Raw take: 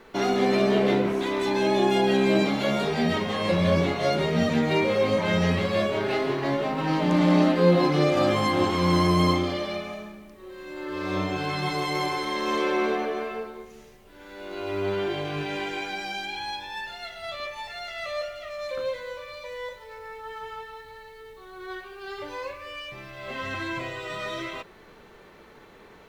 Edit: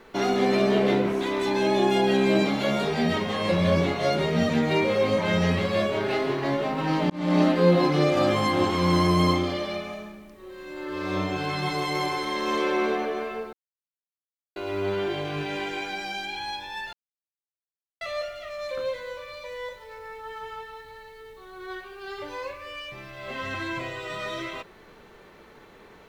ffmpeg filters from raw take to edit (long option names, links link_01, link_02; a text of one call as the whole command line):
ffmpeg -i in.wav -filter_complex "[0:a]asplit=6[link_01][link_02][link_03][link_04][link_05][link_06];[link_01]atrim=end=7.1,asetpts=PTS-STARTPTS,afade=type=out:start_time=7.096:duration=0.004:curve=hsin[link_07];[link_02]atrim=start=7.1:end=13.53,asetpts=PTS-STARTPTS,afade=type=in:duration=0.31,afade=type=out:start_time=6.426:duration=0.004:curve=hsin[link_08];[link_03]atrim=start=13.53:end=14.56,asetpts=PTS-STARTPTS,volume=0[link_09];[link_04]atrim=start=14.56:end=16.93,asetpts=PTS-STARTPTS,afade=type=in:duration=0.004:curve=hsin,afade=type=out:start_time=2.366:duration=0.004:curve=hsin[link_10];[link_05]atrim=start=16.93:end=18.01,asetpts=PTS-STARTPTS,volume=0[link_11];[link_06]atrim=start=18.01,asetpts=PTS-STARTPTS,afade=type=in:duration=0.004:curve=hsin[link_12];[link_07][link_08][link_09][link_10][link_11][link_12]concat=n=6:v=0:a=1" out.wav